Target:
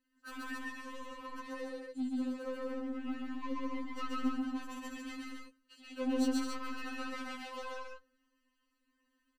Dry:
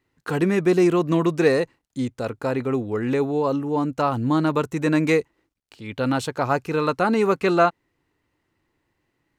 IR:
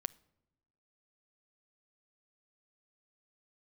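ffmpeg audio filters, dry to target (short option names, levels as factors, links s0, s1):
-filter_complex "[0:a]equalizer=f=230:w=7.9:g=-13,aecho=1:1:3.2:0.89,acompressor=threshold=0.0794:ratio=6,asoftclip=type=tanh:threshold=0.0447,asettb=1/sr,asplit=3[s0][s1][s2];[s0]atrim=end=1.274[s3];[s1]atrim=start=1.27:end=3.44,asetpts=PTS-STARTPTS,afade=t=in:d=0.004:c=qsin,afade=t=out:st=2.166:d=0.004:c=qsin,flanger=delay=6.8:depth=3.8:regen=53:speed=1.1:shape=triangular[s4];[s2]atrim=start=3.436[s5];[s3][s4]acrossfade=d=0.004:c1=hsin:c2=qsin[s6];[s6][s5]acrossfade=d=0.004:c1=qsin:c2=hsin,aecho=1:1:131.2|209.9|277:1|0.501|0.631[s7];[1:a]atrim=start_sample=2205,asetrate=61740,aresample=44100[s8];[s7][s8]afir=irnorm=-1:irlink=0,afftfilt=real='re*3.46*eq(mod(b,12),0)':imag='im*3.46*eq(mod(b,12),0)':win_size=2048:overlap=0.75,volume=0.631"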